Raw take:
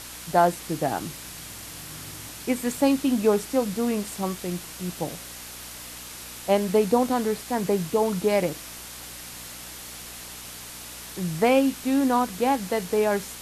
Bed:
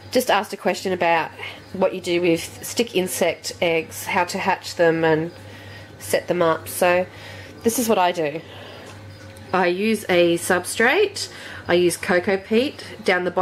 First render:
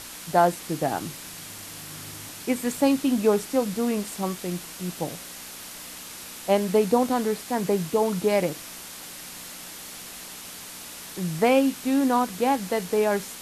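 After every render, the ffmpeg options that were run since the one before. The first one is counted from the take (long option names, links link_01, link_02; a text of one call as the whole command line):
ffmpeg -i in.wav -af "bandreject=frequency=60:width_type=h:width=4,bandreject=frequency=120:width_type=h:width=4" out.wav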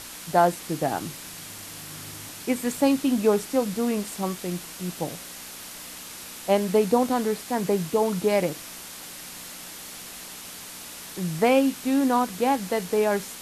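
ffmpeg -i in.wav -af anull out.wav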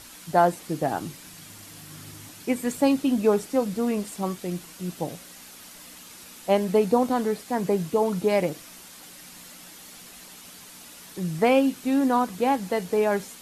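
ffmpeg -i in.wav -af "afftdn=noise_reduction=7:noise_floor=-40" out.wav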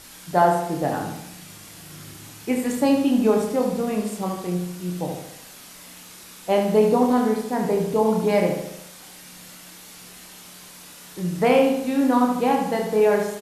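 ffmpeg -i in.wav -filter_complex "[0:a]asplit=2[link_01][link_02];[link_02]adelay=28,volume=-5dB[link_03];[link_01][link_03]amix=inputs=2:normalize=0,asplit=2[link_04][link_05];[link_05]adelay=73,lowpass=frequency=3800:poles=1,volume=-5dB,asplit=2[link_06][link_07];[link_07]adelay=73,lowpass=frequency=3800:poles=1,volume=0.55,asplit=2[link_08][link_09];[link_09]adelay=73,lowpass=frequency=3800:poles=1,volume=0.55,asplit=2[link_10][link_11];[link_11]adelay=73,lowpass=frequency=3800:poles=1,volume=0.55,asplit=2[link_12][link_13];[link_13]adelay=73,lowpass=frequency=3800:poles=1,volume=0.55,asplit=2[link_14][link_15];[link_15]adelay=73,lowpass=frequency=3800:poles=1,volume=0.55,asplit=2[link_16][link_17];[link_17]adelay=73,lowpass=frequency=3800:poles=1,volume=0.55[link_18];[link_04][link_06][link_08][link_10][link_12][link_14][link_16][link_18]amix=inputs=8:normalize=0" out.wav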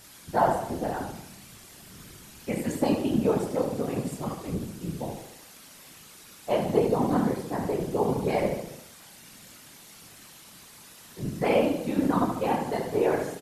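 ffmpeg -i in.wav -af "afftfilt=real='hypot(re,im)*cos(2*PI*random(0))':imag='hypot(re,im)*sin(2*PI*random(1))':win_size=512:overlap=0.75" out.wav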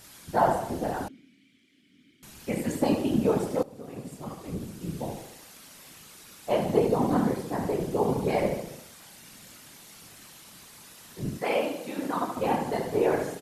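ffmpeg -i in.wav -filter_complex "[0:a]asettb=1/sr,asplit=3[link_01][link_02][link_03];[link_01]atrim=end=1.084[link_04];[link_02]atrim=start=1.08:end=2.23,asetpts=PTS-STARTPTS,afade=type=in:duration=0.004:curve=qsin,afade=type=out:start_time=1.146:duration=0.004:curve=qsin,asplit=3[link_05][link_06][link_07];[link_05]bandpass=frequency=270:width_type=q:width=8,volume=0dB[link_08];[link_06]bandpass=frequency=2290:width_type=q:width=8,volume=-6dB[link_09];[link_07]bandpass=frequency=3010:width_type=q:width=8,volume=-9dB[link_10];[link_08][link_09][link_10]amix=inputs=3:normalize=0[link_11];[link_03]atrim=start=2.226[link_12];[link_04][link_11]acrossfade=duration=0.004:curve1=hsin:curve2=qsin[link_13];[link_13][link_12]acrossfade=duration=0.004:curve1=qsin:curve2=hsin,asettb=1/sr,asplit=3[link_14][link_15][link_16];[link_14]atrim=end=11.374[link_17];[link_15]atrim=start=11.37:end=12.37,asetpts=PTS-STARTPTS,afade=type=in:duration=0.004:curve=qsin,afade=type=out:start_time=0.996:duration=0.004:curve=qsin,highpass=frequency=650:poles=1[link_18];[link_16]atrim=start=12.366[link_19];[link_17][link_18]acrossfade=duration=0.004:curve1=hsin:curve2=qsin[link_20];[link_20][link_19]acrossfade=duration=0.004:curve1=qsin:curve2=hsin,asplit=2[link_21][link_22];[link_21]atrim=end=3.63,asetpts=PTS-STARTPTS,afade=type=out:start_time=3.626:duration=0.004:curve=hsin:silence=0.11885[link_23];[link_22]atrim=start=3.63,asetpts=PTS-STARTPTS,afade=type=in:duration=1.42:silence=0.11885[link_24];[link_23][link_24]concat=n=2:v=0:a=1" out.wav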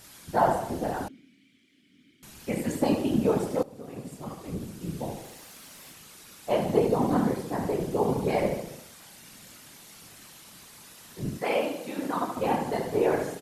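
ffmpeg -i in.wav -filter_complex "[0:a]asettb=1/sr,asplit=3[link_01][link_02][link_03];[link_01]atrim=end=5.244[link_04];[link_02]atrim=start=5.24:end=5.92,asetpts=PTS-STARTPTS,afade=type=in:duration=0.004:curve=qsin,afade=type=out:start_time=0.676:duration=0.004:curve=qsin,aeval=exprs='val(0)+0.5*0.00158*sgn(val(0))':channel_layout=same[link_05];[link_03]atrim=start=5.916[link_06];[link_04][link_05]acrossfade=duration=0.004:curve1=hsin:curve2=qsin[link_07];[link_07][link_06]acrossfade=duration=0.004:curve1=qsin:curve2=hsin" out.wav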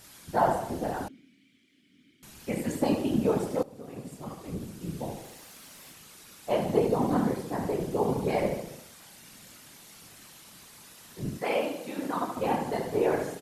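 ffmpeg -i in.wav -af "volume=-1.5dB" out.wav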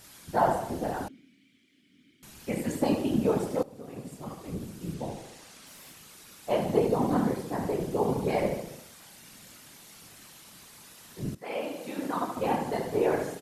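ffmpeg -i in.wav -filter_complex "[0:a]asettb=1/sr,asplit=3[link_01][link_02][link_03];[link_01]atrim=end=4.944[link_04];[link_02]atrim=start=4.94:end=5.67,asetpts=PTS-STARTPTS,afade=type=in:duration=0.004:curve=qsin,afade=type=out:start_time=0.726:duration=0.004:curve=qsin,lowpass=9300[link_05];[link_03]atrim=start=5.666[link_06];[link_04][link_05]acrossfade=duration=0.004:curve1=hsin:curve2=qsin[link_07];[link_07][link_06]acrossfade=duration=0.004:curve1=qsin:curve2=hsin,asplit=2[link_08][link_09];[link_08]atrim=end=11.35,asetpts=PTS-STARTPTS,afade=type=out:start_time=11.346:duration=0.004:curve=hsin:silence=0.158489[link_10];[link_09]atrim=start=11.35,asetpts=PTS-STARTPTS,afade=type=in:duration=0.51:silence=0.158489[link_11];[link_10][link_11]concat=n=2:v=0:a=1" out.wav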